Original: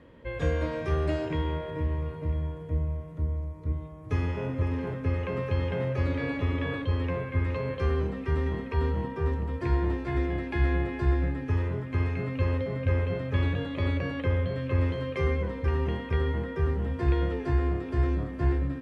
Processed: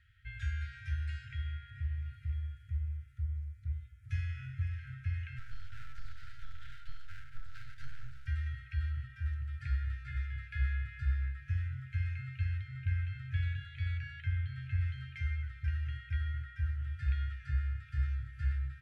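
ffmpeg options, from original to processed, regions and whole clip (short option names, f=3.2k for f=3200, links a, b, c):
-filter_complex "[0:a]asettb=1/sr,asplit=3[a][b][c];[a]atrim=end=5.384[d];[b]atrim=start=5.38:end=8.27,asetpts=PTS-STARTPTS,afade=t=in:d=0.004:c=qsin,afade=t=out:st=2.886:d=0.004:c=qsin,asuperstop=centerf=2200:order=4:qfactor=0.81,aeval=exprs='abs(val(0))':c=same[e];[c]atrim=start=8.266[f];[d][e]acrossfade=d=0.004:c1=hsin:c2=qsin[g];[g][f]acrossfade=d=0.004:c1=qsin:c2=hsin,afftfilt=real='re*(1-between(b*sr/4096,130,1300))':imag='im*(1-between(b*sr/4096,130,1300))':win_size=4096:overlap=0.75,adynamicequalizer=threshold=0.00251:dfrequency=2500:dqfactor=0.7:tfrequency=2500:tqfactor=0.7:attack=5:release=100:ratio=0.375:range=2.5:mode=cutabove:tftype=highshelf,volume=-6.5dB"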